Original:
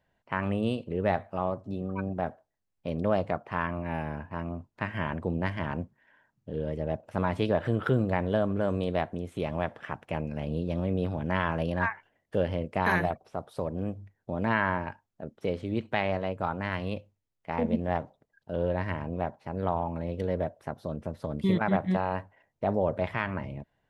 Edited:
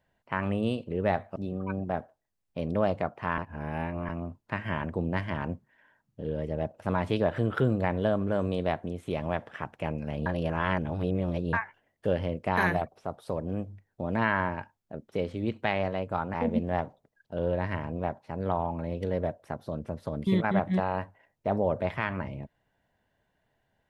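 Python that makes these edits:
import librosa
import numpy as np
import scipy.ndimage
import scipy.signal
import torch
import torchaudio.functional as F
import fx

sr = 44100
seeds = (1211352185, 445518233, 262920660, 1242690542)

y = fx.edit(x, sr, fx.cut(start_s=1.36, length_s=0.29),
    fx.reverse_span(start_s=3.67, length_s=0.71),
    fx.reverse_span(start_s=10.55, length_s=1.27),
    fx.cut(start_s=16.63, length_s=0.88), tone=tone)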